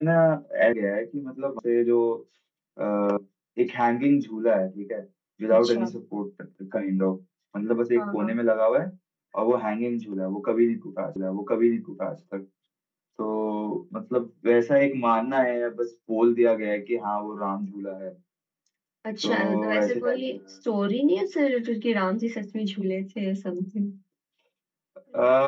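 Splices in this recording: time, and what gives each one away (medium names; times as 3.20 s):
0.73 s: sound stops dead
1.59 s: sound stops dead
3.17 s: sound stops dead
11.16 s: repeat of the last 1.03 s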